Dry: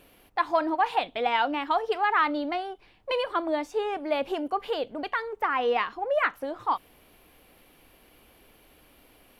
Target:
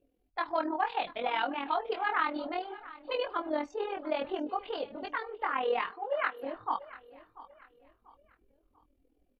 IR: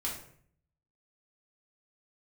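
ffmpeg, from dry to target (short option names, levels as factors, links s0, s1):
-filter_complex "[0:a]asettb=1/sr,asplit=3[s0][s1][s2];[s0]atrim=end=5.894[s3];[s1]atrim=start=5.89:end=6.43,asetpts=PTS-STARTPTS,afade=t=in:d=0.004:c=qsin,afade=t=out:st=0.536:d=0.004:c=qsin,highpass=370[s4];[s2]atrim=start=6.426[s5];[s3][s4]acrossfade=d=0.004:c1=hsin:c2=qsin[s6];[s6][s5]acrossfade=d=0.004:c1=qsin:c2=hsin,afftdn=nr=27:nf=-49,flanger=delay=18:depth=4.7:speed=0.62,tremolo=f=41:d=0.621,aecho=1:1:690|1380|2070:0.126|0.0453|0.0163"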